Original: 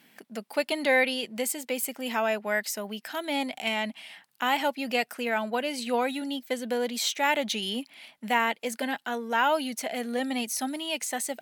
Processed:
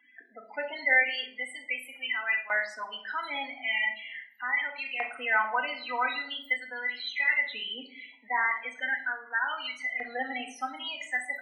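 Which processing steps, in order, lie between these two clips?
de-essing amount 95%
hollow resonant body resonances 270/2,000/4,000 Hz, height 10 dB, ringing for 70 ms
spectral peaks only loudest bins 16
auto-filter high-pass saw up 0.4 Hz 980–2,300 Hz
rectangular room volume 1,000 cubic metres, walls furnished, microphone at 2 metres

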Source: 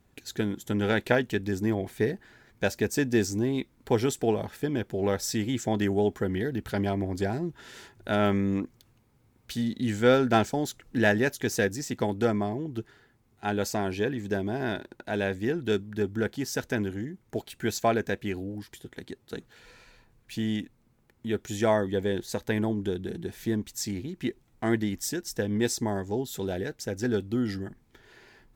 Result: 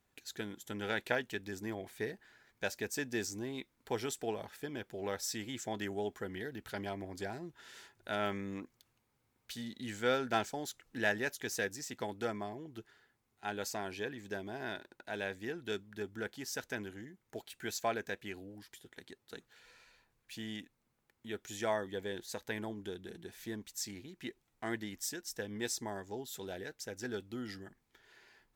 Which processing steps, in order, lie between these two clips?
low-shelf EQ 460 Hz −11.5 dB
level −6 dB

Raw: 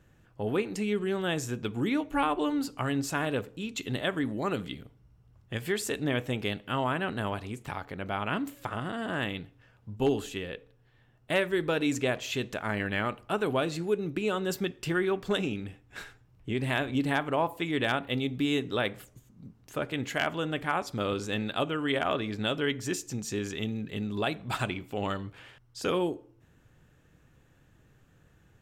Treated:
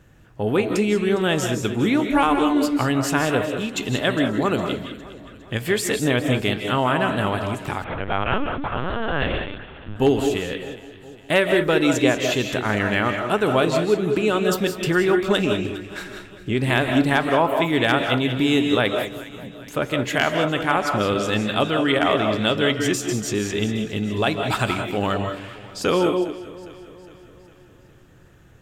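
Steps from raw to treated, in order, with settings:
delay that swaps between a low-pass and a high-pass 204 ms, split 1,100 Hz, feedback 72%, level −14 dB
convolution reverb, pre-delay 120 ms, DRR 5.5 dB
0:07.84–0:09.96: linear-prediction vocoder at 8 kHz pitch kept
level +8.5 dB

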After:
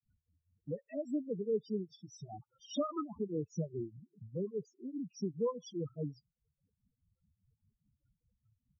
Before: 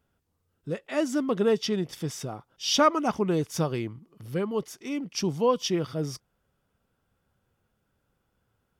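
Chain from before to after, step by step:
granular cloud 251 ms, grains 4.9 per second, spray 26 ms, pitch spread up and down by 0 semitones
spectral peaks only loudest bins 4
multiband upward and downward compressor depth 40%
level −6 dB

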